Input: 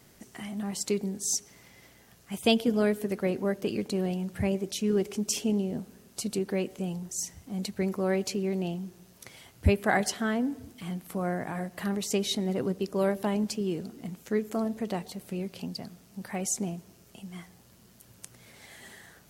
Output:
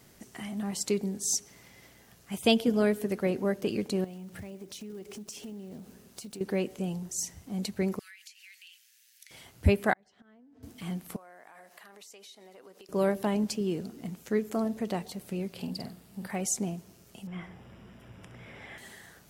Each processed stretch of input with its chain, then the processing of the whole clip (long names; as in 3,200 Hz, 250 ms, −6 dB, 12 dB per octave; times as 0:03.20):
0:04.04–0:06.41: one scale factor per block 5 bits + downward compressor, threshold −40 dBFS
0:07.99–0:09.31: Butterworth high-pass 1,700 Hz 48 dB per octave + downward compressor 8 to 1, threshold −47 dBFS
0:09.93–0:10.63: gate with flip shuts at −24 dBFS, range −25 dB + downward compressor 4 to 1, threshold −55 dBFS + high-frequency loss of the air 120 metres
0:11.16–0:12.89: high-pass filter 640 Hz + downward compressor 10 to 1, threshold −48 dBFS
0:15.53–0:16.31: parametric band 6,100 Hz −8 dB 0.33 octaves + double-tracking delay 49 ms −6 dB
0:17.27–0:18.78: mu-law and A-law mismatch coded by mu + Savitzky-Golay smoothing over 25 samples + flutter between parallel walls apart 11.2 metres, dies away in 0.33 s
whole clip: no processing